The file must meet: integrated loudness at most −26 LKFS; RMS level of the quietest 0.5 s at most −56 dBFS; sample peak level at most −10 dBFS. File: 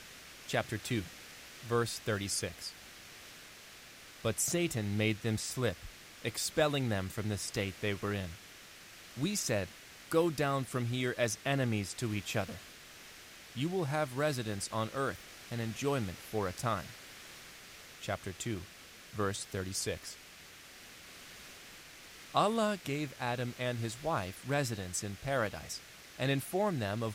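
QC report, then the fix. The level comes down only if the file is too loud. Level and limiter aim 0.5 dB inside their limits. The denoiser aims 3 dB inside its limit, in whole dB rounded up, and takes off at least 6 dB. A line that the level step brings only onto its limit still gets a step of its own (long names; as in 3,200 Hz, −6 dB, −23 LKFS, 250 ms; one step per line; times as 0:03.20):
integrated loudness −35.0 LKFS: in spec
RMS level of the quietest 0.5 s −54 dBFS: out of spec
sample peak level −14.5 dBFS: in spec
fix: broadband denoise 6 dB, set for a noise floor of −54 dBFS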